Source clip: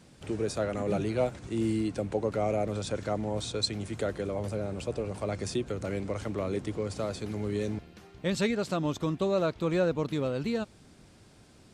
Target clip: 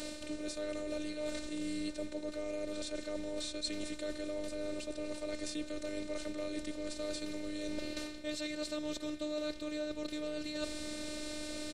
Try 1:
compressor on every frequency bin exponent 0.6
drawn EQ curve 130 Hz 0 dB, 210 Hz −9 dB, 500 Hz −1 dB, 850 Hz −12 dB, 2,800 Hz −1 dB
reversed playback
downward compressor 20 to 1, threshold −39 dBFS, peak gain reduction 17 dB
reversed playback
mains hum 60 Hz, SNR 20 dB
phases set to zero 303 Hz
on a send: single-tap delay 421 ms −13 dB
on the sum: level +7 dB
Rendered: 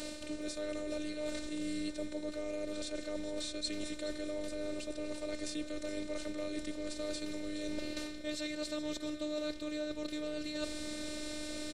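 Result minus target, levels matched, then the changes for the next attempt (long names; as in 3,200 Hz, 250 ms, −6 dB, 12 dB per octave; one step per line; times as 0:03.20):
echo-to-direct +8.5 dB
change: single-tap delay 421 ms −21.5 dB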